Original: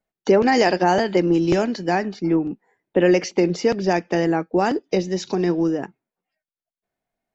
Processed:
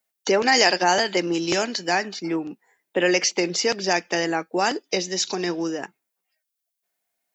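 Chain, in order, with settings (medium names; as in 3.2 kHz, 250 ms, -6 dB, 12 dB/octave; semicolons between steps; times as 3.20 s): tilt EQ +4 dB/octave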